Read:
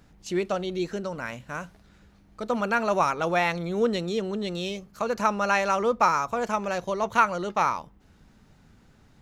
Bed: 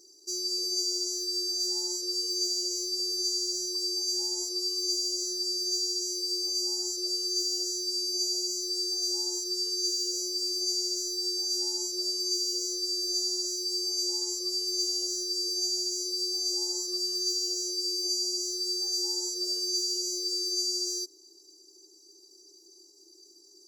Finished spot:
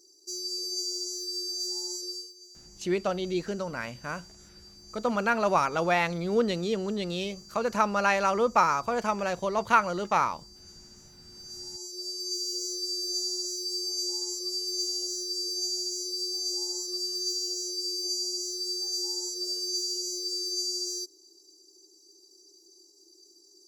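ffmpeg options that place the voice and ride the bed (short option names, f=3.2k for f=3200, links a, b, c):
-filter_complex "[0:a]adelay=2550,volume=-1dB[a];[1:a]volume=17.5dB,afade=t=out:st=2.03:d=0.3:silence=0.112202,afade=t=in:st=11.27:d=1.38:silence=0.0944061[b];[a][b]amix=inputs=2:normalize=0"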